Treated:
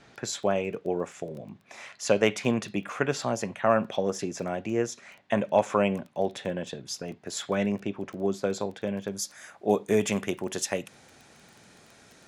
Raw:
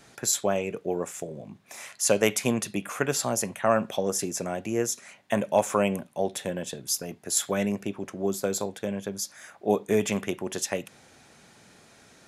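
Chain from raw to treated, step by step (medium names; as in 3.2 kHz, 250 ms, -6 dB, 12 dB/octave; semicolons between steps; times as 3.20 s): low-pass 4.3 kHz 12 dB/octave, from 9.07 s 11 kHz; crackle 13 per s -37 dBFS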